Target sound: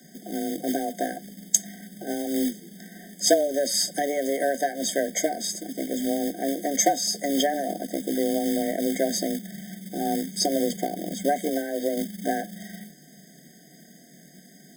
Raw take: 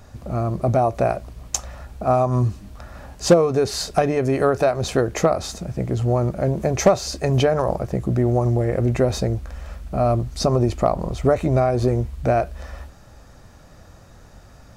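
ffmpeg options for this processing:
ffmpeg -i in.wav -filter_complex "[0:a]asplit=3[link_01][link_02][link_03];[link_01]afade=type=out:start_time=11.49:duration=0.02[link_04];[link_02]highpass=130,lowpass=2600,afade=type=in:start_time=11.49:duration=0.02,afade=type=out:start_time=11.95:duration=0.02[link_05];[link_03]afade=type=in:start_time=11.95:duration=0.02[link_06];[link_04][link_05][link_06]amix=inputs=3:normalize=0,afreqshift=140,acrossover=split=360|2000[link_07][link_08][link_09];[link_07]acrusher=bits=3:mode=log:mix=0:aa=0.000001[link_10];[link_10][link_08][link_09]amix=inputs=3:normalize=0,crystalizer=i=4.5:c=0,afftfilt=real='re*eq(mod(floor(b*sr/1024/760),2),0)':imag='im*eq(mod(floor(b*sr/1024/760),2),0)':win_size=1024:overlap=0.75,volume=-6.5dB" out.wav

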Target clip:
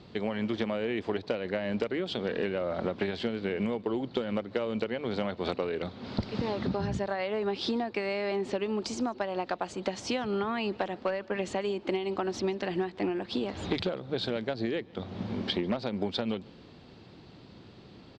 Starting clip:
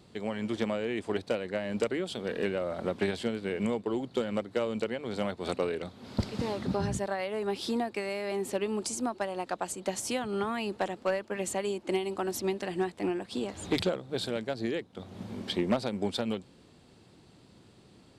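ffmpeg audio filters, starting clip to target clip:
ffmpeg -i in.wav -filter_complex "[0:a]lowpass=frequency=5000:width=0.5412,lowpass=frequency=5000:width=1.3066,acompressor=threshold=-33dB:ratio=6,asplit=2[link_01][link_02];[link_02]adelay=145.8,volume=-25dB,highshelf=frequency=4000:gain=-3.28[link_03];[link_01][link_03]amix=inputs=2:normalize=0,volume=6dB" out.wav

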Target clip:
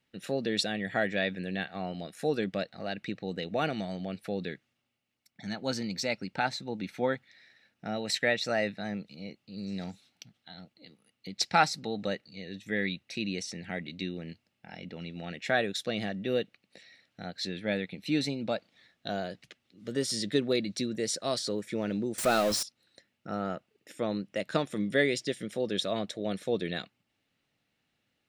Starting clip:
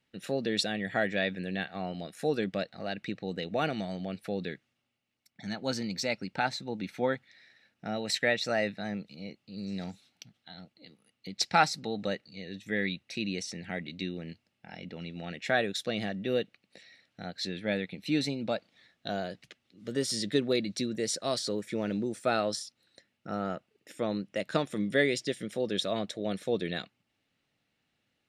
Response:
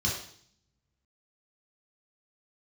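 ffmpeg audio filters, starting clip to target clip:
-filter_complex "[0:a]asettb=1/sr,asplit=3[link_01][link_02][link_03];[link_01]atrim=end=22.184[link_04];[link_02]atrim=start=22.18:end=22.63,asetpts=PTS-STARTPTS,afade=type=in:duration=0.004:curve=qsin,afade=type=out:start_time=0.446:duration=0.004:curve=qsin,aeval=exprs='val(0)+0.5*0.0376*sgn(val(0))':channel_layout=same[link_05];[link_03]atrim=start=22.626[link_06];[link_04][link_05]acrossfade=duration=0.004:curve1=hsin:curve2=qsin[link_07];[link_07][link_06]acrossfade=duration=0.004:curve1=qsin:curve2=hsin"

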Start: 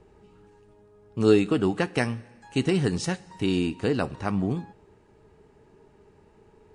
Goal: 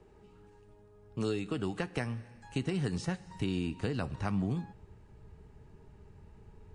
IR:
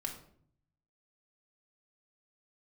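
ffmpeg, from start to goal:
-filter_complex "[0:a]acrossover=split=180|2100[link_01][link_02][link_03];[link_01]acompressor=threshold=-43dB:ratio=4[link_04];[link_02]acompressor=threshold=-28dB:ratio=4[link_05];[link_03]acompressor=threshold=-42dB:ratio=4[link_06];[link_04][link_05][link_06]amix=inputs=3:normalize=0,asubboost=boost=5:cutoff=150,volume=-3.5dB"

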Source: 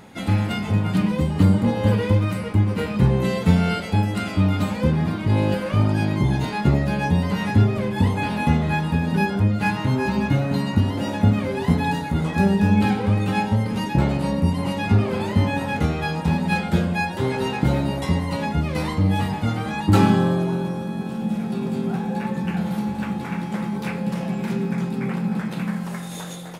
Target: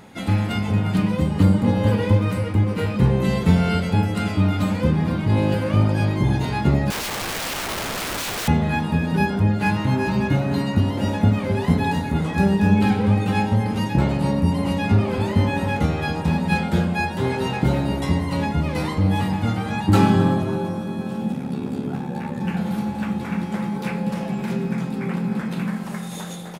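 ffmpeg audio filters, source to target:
ffmpeg -i in.wav -filter_complex "[0:a]asplit=3[link_01][link_02][link_03];[link_01]afade=type=out:start_time=21.31:duration=0.02[link_04];[link_02]aeval=exprs='val(0)*sin(2*PI*35*n/s)':channel_layout=same,afade=type=in:start_time=21.31:duration=0.02,afade=type=out:start_time=22.39:duration=0.02[link_05];[link_03]afade=type=in:start_time=22.39:duration=0.02[link_06];[link_04][link_05][link_06]amix=inputs=3:normalize=0,asplit=2[link_07][link_08];[link_08]adelay=265,lowpass=frequency=1000:poles=1,volume=-8dB,asplit=2[link_09][link_10];[link_10]adelay=265,lowpass=frequency=1000:poles=1,volume=0.46,asplit=2[link_11][link_12];[link_12]adelay=265,lowpass=frequency=1000:poles=1,volume=0.46,asplit=2[link_13][link_14];[link_14]adelay=265,lowpass=frequency=1000:poles=1,volume=0.46,asplit=2[link_15][link_16];[link_16]adelay=265,lowpass=frequency=1000:poles=1,volume=0.46[link_17];[link_07][link_09][link_11][link_13][link_15][link_17]amix=inputs=6:normalize=0,asettb=1/sr,asplit=3[link_18][link_19][link_20];[link_18]atrim=end=6.904[link_21];[link_19]atrim=start=6.9:end=8.48,asetpts=PTS-STARTPTS,afade=type=in:duration=0.004:curve=qsin,afade=type=out:start_time=1.576:duration=0.004:curve=qsin,aeval=exprs='(mod(13.3*val(0)+1,2)-1)/13.3':channel_layout=same[link_22];[link_20]atrim=start=8.476[link_23];[link_21][link_22]acrossfade=duration=0.004:curve1=hsin:curve2=qsin[link_24];[link_24][link_23]acrossfade=duration=0.004:curve1=qsin:curve2=hsin" out.wav

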